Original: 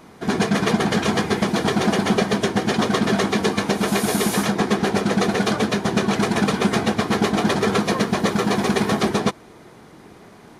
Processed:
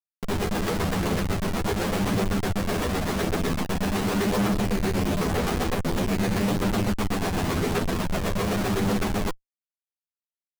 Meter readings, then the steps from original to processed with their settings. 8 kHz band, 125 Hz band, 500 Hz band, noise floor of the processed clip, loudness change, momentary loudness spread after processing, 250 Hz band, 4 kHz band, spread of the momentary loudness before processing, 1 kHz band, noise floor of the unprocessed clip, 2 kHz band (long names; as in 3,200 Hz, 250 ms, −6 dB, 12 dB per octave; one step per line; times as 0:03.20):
−6.0 dB, −1.5 dB, −6.0 dB, below −85 dBFS, −5.5 dB, 3 LU, −6.0 dB, −7.5 dB, 2 LU, −7.0 dB, −46 dBFS, −7.5 dB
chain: comparator with hysteresis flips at −20 dBFS
multi-voice chorus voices 2, 0.45 Hz, delay 11 ms, depth 1.3 ms
level −1 dB